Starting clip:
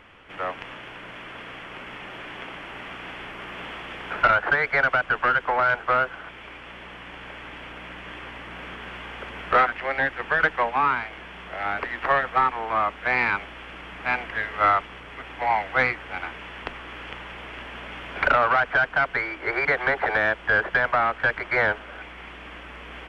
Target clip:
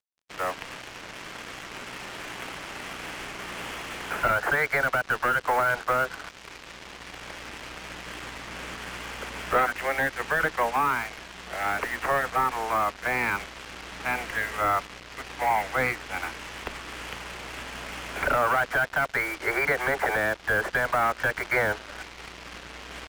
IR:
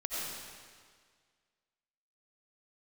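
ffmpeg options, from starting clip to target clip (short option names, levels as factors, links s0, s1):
-filter_complex "[0:a]acrossover=split=260|590[s0][s1][s2];[s2]alimiter=limit=0.15:level=0:latency=1:release=38[s3];[s0][s1][s3]amix=inputs=3:normalize=0,acrusher=bits=5:mix=0:aa=0.5"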